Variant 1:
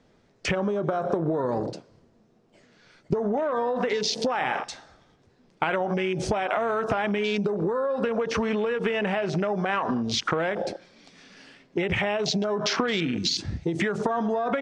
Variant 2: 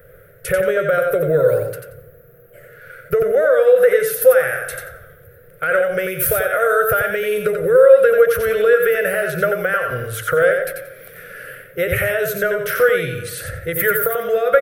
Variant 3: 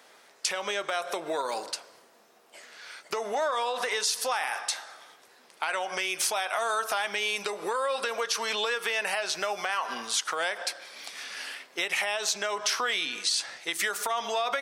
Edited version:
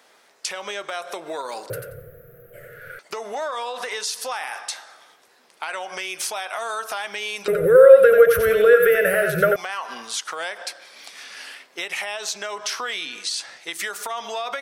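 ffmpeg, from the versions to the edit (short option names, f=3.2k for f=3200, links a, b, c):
-filter_complex "[1:a]asplit=2[a][b];[2:a]asplit=3[c][d][e];[c]atrim=end=1.702[f];[a]atrim=start=1.698:end=2.992[g];[d]atrim=start=2.988:end=7.482[h];[b]atrim=start=7.478:end=9.562[i];[e]atrim=start=9.558[j];[f][g]acrossfade=d=0.004:c1=hsin:c2=hsin[k];[k][h]acrossfade=d=0.004:c1=hsin:c2=hsin[l];[l][i]acrossfade=d=0.004:c1=hsin:c2=hsin[m];[m][j]acrossfade=d=0.004:c1=hsin:c2=hsin"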